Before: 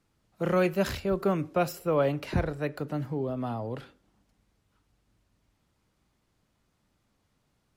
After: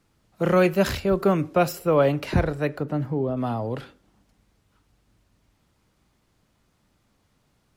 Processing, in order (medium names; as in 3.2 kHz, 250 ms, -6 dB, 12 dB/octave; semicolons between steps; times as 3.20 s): 2.77–3.37 s: treble shelf 2.4 kHz -9 dB; trim +6 dB